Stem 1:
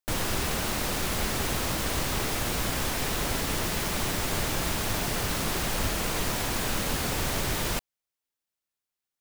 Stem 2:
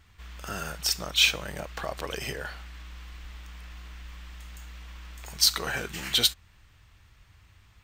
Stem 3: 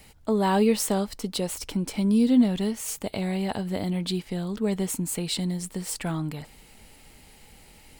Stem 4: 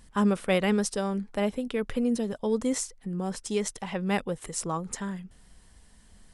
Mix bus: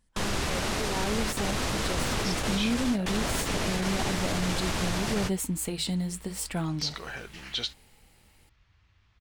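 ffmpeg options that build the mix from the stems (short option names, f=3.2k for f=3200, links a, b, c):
-filter_complex "[0:a]lowpass=8.1k,volume=0.5dB[a];[1:a]lowpass=f=5.9k:w=0.5412,lowpass=f=5.9k:w=1.3066,adelay=1400,volume=-7.5dB[b];[2:a]dynaudnorm=f=380:g=9:m=9.5dB,flanger=delay=5.3:depth=4.5:regen=-71:speed=0.64:shape=sinusoidal,adelay=500,volume=-6.5dB[c];[3:a]acrusher=bits=9:mode=log:mix=0:aa=0.000001,volume=-15.5dB,asplit=2[d][e];[e]apad=whole_len=405806[f];[a][f]sidechaingate=range=-54dB:threshold=-57dB:ratio=16:detection=peak[g];[g][b][c][d]amix=inputs=4:normalize=0,alimiter=limit=-18.5dB:level=0:latency=1:release=43"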